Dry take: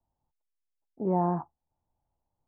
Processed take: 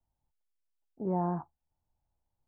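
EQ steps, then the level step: bass shelf 110 Hz +8 dB; peaking EQ 1.5 kHz +4.5 dB 0.33 oct; -5.5 dB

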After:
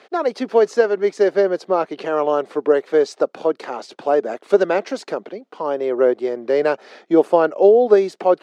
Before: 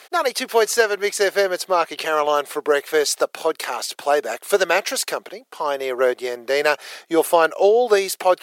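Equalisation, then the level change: dynamic bell 2.7 kHz, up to -5 dB, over -35 dBFS, Q 0.84; distance through air 140 m; peaking EQ 230 Hz +13.5 dB 2.6 oct; -4.5 dB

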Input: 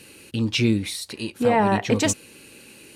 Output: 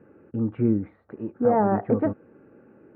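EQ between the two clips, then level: high-pass 130 Hz 6 dB/octave; steep low-pass 1.4 kHz 36 dB/octave; peaking EQ 1 kHz -11.5 dB 0.2 oct; 0.0 dB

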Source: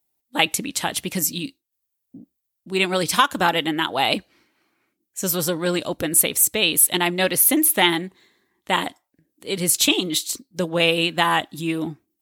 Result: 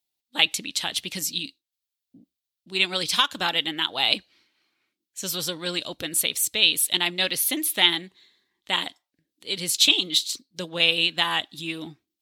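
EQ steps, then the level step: peaking EQ 3.8 kHz +14.5 dB 1.6 oct; -10.5 dB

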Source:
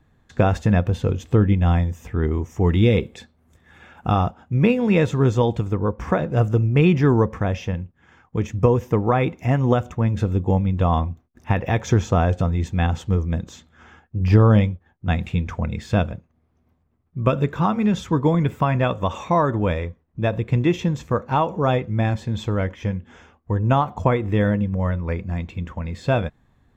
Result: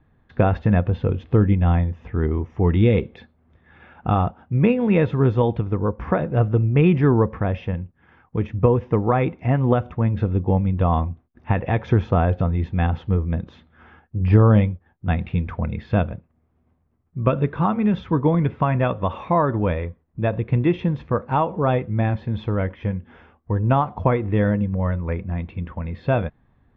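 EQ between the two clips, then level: Bessel low-pass 2.4 kHz, order 6; 0.0 dB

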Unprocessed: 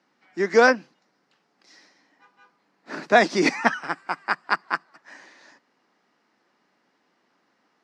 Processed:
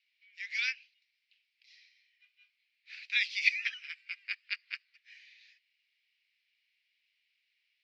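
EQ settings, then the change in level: Chebyshev high-pass 2.3 kHz, order 5; distance through air 350 m; +7.5 dB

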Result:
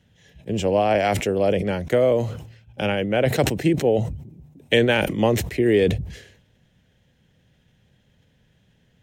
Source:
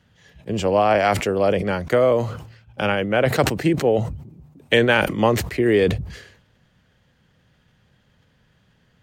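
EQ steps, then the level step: peaking EQ 1.2 kHz -10.5 dB 0.83 oct; band-stop 4.6 kHz, Q 8.6; 0.0 dB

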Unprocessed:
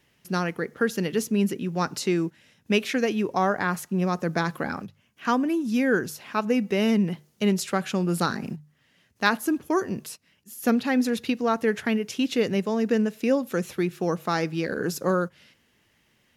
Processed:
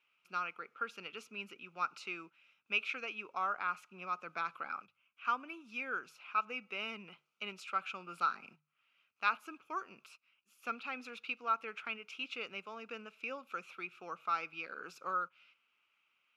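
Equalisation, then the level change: two resonant band-passes 1.8 kHz, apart 0.89 oct; -1.0 dB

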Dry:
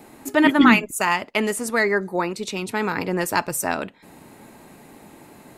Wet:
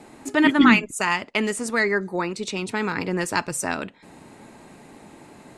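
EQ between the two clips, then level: low-pass 9.4 kHz 24 dB/octave; dynamic bell 680 Hz, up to -5 dB, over -31 dBFS, Q 1.1; 0.0 dB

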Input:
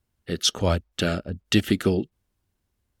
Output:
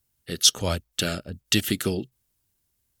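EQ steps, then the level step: pre-emphasis filter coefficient 0.8; peaking EQ 130 Hz +6 dB 0.26 oct; +9.0 dB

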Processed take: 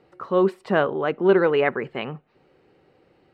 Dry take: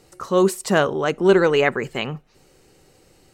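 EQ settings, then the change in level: high-pass 220 Hz 6 dB/octave; distance through air 420 m; 0.0 dB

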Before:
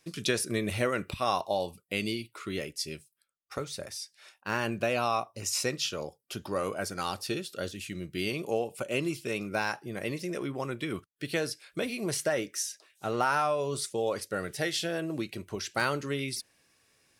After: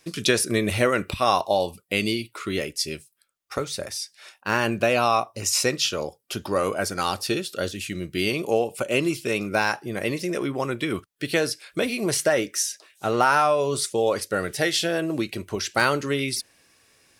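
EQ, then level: peaking EQ 150 Hz -3 dB 0.78 oct; +8.0 dB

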